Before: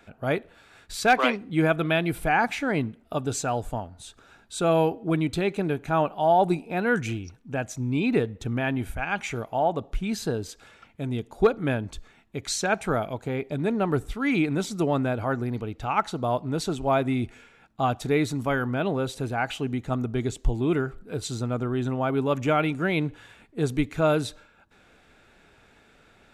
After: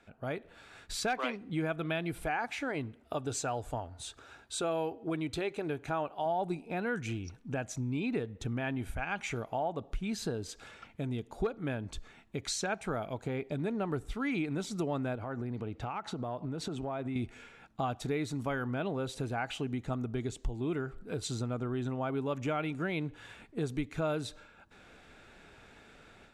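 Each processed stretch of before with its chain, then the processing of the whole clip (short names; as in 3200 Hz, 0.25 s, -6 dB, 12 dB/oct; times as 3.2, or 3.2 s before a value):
2.23–6.26 HPF 42 Hz + bell 190 Hz -12 dB 0.46 oct
15.15–17.16 HPF 68 Hz + high shelf 3100 Hz -8 dB + compressor 5:1, threshold -31 dBFS
whole clip: AGC gain up to 9 dB; LPF 11000 Hz 12 dB/oct; compressor 2.5:1, threshold -27 dBFS; gain -8 dB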